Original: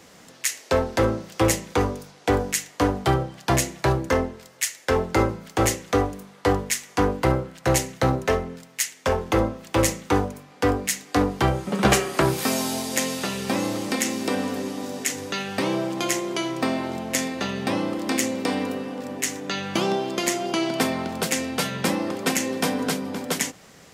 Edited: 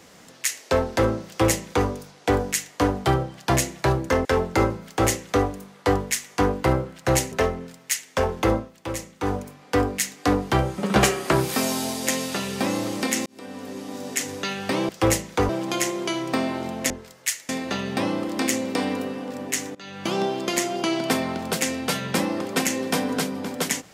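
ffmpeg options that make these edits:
ffmpeg -i in.wav -filter_complex "[0:a]asplit=11[link_01][link_02][link_03][link_04][link_05][link_06][link_07][link_08][link_09][link_10][link_11];[link_01]atrim=end=4.252[link_12];[link_02]atrim=start=4.838:end=7.912[link_13];[link_03]atrim=start=8.208:end=9.61,asetpts=PTS-STARTPTS,afade=type=out:start_time=1.222:duration=0.18:silence=0.316228[link_14];[link_04]atrim=start=9.61:end=10.08,asetpts=PTS-STARTPTS,volume=-10dB[link_15];[link_05]atrim=start=10.08:end=14.15,asetpts=PTS-STARTPTS,afade=type=in:duration=0.18:silence=0.316228,afade=type=out:start_time=4.066:duration=0.004:curve=hsin[link_16];[link_06]atrim=start=14.15:end=15.782,asetpts=PTS-STARTPTS,afade=type=in:duration=0.94[link_17];[link_07]atrim=start=1.268:end=1.872[link_18];[link_08]atrim=start=15.778:end=17.192[link_19];[link_09]atrim=start=4.248:end=4.842[link_20];[link_10]atrim=start=17.188:end=19.45,asetpts=PTS-STARTPTS,afade=type=out:start_time=2.258:duration=0.004:curve=hsin:silence=0.0794328[link_21];[link_11]atrim=start=19.45,asetpts=PTS-STARTPTS,afade=type=in:duration=0.49:silence=0.0794328[link_22];[link_12][link_13]acrossfade=duration=0.004:curve1=hsin:curve2=hsin[link_23];[link_14][link_15][link_16][link_17]concat=n=4:v=0:a=1[link_24];[link_23][link_24]acrossfade=duration=0.004:curve1=hsin:curve2=hsin[link_25];[link_25][link_18]acrossfade=duration=0.004:curve1=hsin:curve2=hsin[link_26];[link_26][link_19]acrossfade=duration=0.004:curve1=hsin:curve2=hsin[link_27];[link_27][link_20]acrossfade=duration=0.004:curve1=hsin:curve2=hsin[link_28];[link_21][link_22]concat=n=2:v=0:a=1[link_29];[link_28][link_29]acrossfade=duration=0.004:curve1=hsin:curve2=hsin" out.wav

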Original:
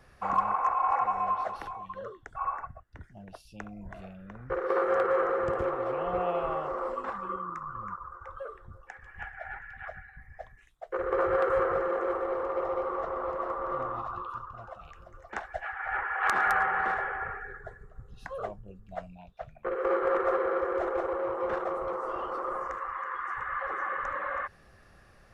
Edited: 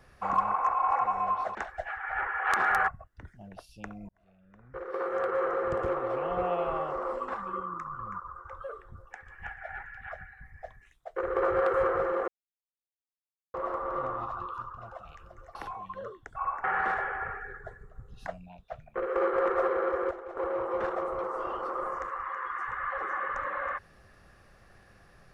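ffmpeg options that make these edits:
ffmpeg -i in.wav -filter_complex "[0:a]asplit=11[link_01][link_02][link_03][link_04][link_05][link_06][link_07][link_08][link_09][link_10][link_11];[link_01]atrim=end=1.552[link_12];[link_02]atrim=start=15.308:end=16.642[link_13];[link_03]atrim=start=2.638:end=3.85,asetpts=PTS-STARTPTS,afade=type=out:start_time=1.208:duration=0.004:curve=hsin[link_14];[link_04]atrim=start=3.85:end=12.04,asetpts=PTS-STARTPTS,afade=type=in:duration=1.78,afade=type=out:start_time=8.186:duration=0.004:curve=hsin[link_15];[link_05]atrim=start=12.04:end=13.3,asetpts=PTS-STARTPTS,volume=0[link_16];[link_06]atrim=start=13.3:end=15.312,asetpts=PTS-STARTPTS,afade=type=in:duration=0.004:curve=hsin[link_17];[link_07]atrim=start=1.548:end=2.642[link_18];[link_08]atrim=start=16.638:end=18.282[link_19];[link_09]atrim=start=18.968:end=20.802[link_20];[link_10]atrim=start=20.798:end=21.062,asetpts=PTS-STARTPTS,volume=-11.5dB[link_21];[link_11]atrim=start=21.058[link_22];[link_12][link_13]acrossfade=duration=0.004:curve1=hsin:curve2=hsin[link_23];[link_14][link_15][link_16][link_17]concat=n=4:v=0:a=1[link_24];[link_23][link_24]acrossfade=duration=0.004:curve1=hsin:curve2=hsin[link_25];[link_25][link_18]acrossfade=duration=0.004:curve1=hsin:curve2=hsin[link_26];[link_26][link_19]acrossfade=duration=0.004:curve1=hsin:curve2=hsin[link_27];[link_27][link_20]acrossfade=duration=0.004:curve1=hsin:curve2=hsin[link_28];[link_28][link_21]acrossfade=duration=0.004:curve1=hsin:curve2=hsin[link_29];[link_29][link_22]acrossfade=duration=0.004:curve1=hsin:curve2=hsin" out.wav

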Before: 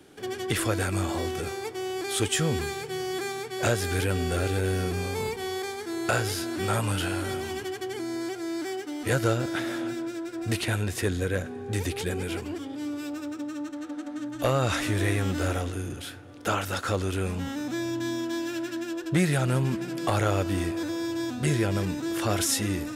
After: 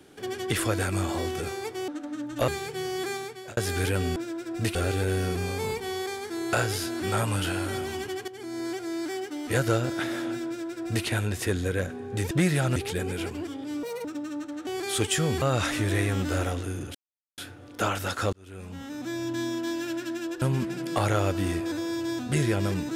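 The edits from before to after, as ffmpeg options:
ffmpeg -i in.wav -filter_complex "[0:a]asplit=16[link_01][link_02][link_03][link_04][link_05][link_06][link_07][link_08][link_09][link_10][link_11][link_12][link_13][link_14][link_15][link_16];[link_01]atrim=end=1.882[link_17];[link_02]atrim=start=13.908:end=14.512[link_18];[link_03]atrim=start=2.628:end=3.72,asetpts=PTS-STARTPTS,afade=type=out:start_time=0.682:duration=0.41[link_19];[link_04]atrim=start=3.72:end=4.312,asetpts=PTS-STARTPTS,afade=type=in:duration=0.004:curve=hsin[link_20];[link_05]atrim=start=10.028:end=10.622[link_21];[link_06]atrim=start=4.308:end=7.84,asetpts=PTS-STARTPTS,afade=type=out:start_time=3.528:duration=0.004:curve=hsin:silence=0.237137[link_22];[link_07]atrim=start=7.84:end=11.872,asetpts=PTS-STARTPTS,afade=type=in:duration=0.37:silence=0.237137[link_23];[link_08]atrim=start=19.078:end=19.532[link_24];[link_09]atrim=start=11.868:end=12.944[link_25];[link_10]atrim=start=12.94:end=13.29,asetpts=PTS-STARTPTS,asetrate=71001,aresample=44100[link_26];[link_11]atrim=start=13.286:end=13.912[link_27];[link_12]atrim=start=1.878:end=2.632[link_28];[link_13]atrim=start=14.508:end=16.04,asetpts=PTS-STARTPTS,afade=type=out:start_time=1.528:duration=0.004:curve=hsin,apad=pad_dur=0.43[link_29];[link_14]atrim=start=16.04:end=16.99,asetpts=PTS-STARTPTS,afade=type=in:duration=0.004:curve=hsin,afade=type=out:start_time=0.946:duration=0.004:curve=hsin[link_30];[link_15]atrim=start=16.99:end=19.082,asetpts=PTS-STARTPTS,afade=type=in:duration=1.04[link_31];[link_16]atrim=start=19.528[link_32];[link_17][link_18]acrossfade=duration=0.004:curve1=hsin:curve2=hsin[link_33];[link_19][link_20]concat=n=2:v=0:a=1[link_34];[link_33][link_34]acrossfade=duration=0.004:curve1=hsin:curve2=hsin[link_35];[link_35][link_21]acrossfade=duration=0.004:curve1=hsin:curve2=hsin[link_36];[link_22][link_23]concat=n=2:v=0:a=1[link_37];[link_36][link_37]acrossfade=duration=0.004:curve1=hsin:curve2=hsin[link_38];[link_38][link_24]acrossfade=duration=0.004:curve1=hsin:curve2=hsin[link_39];[link_39][link_25]acrossfade=duration=0.004:curve1=hsin:curve2=hsin[link_40];[link_40][link_26]acrossfade=duration=0.004:curve1=hsin:curve2=hsin[link_41];[link_41][link_27]acrossfade=duration=0.004:curve1=hsin:curve2=hsin[link_42];[link_42][link_28]acrossfade=duration=0.004:curve1=hsin:curve2=hsin[link_43];[link_29][link_30][link_31]concat=n=3:v=0:a=1[link_44];[link_43][link_44]acrossfade=duration=0.004:curve1=hsin:curve2=hsin[link_45];[link_45][link_32]acrossfade=duration=0.004:curve1=hsin:curve2=hsin" out.wav

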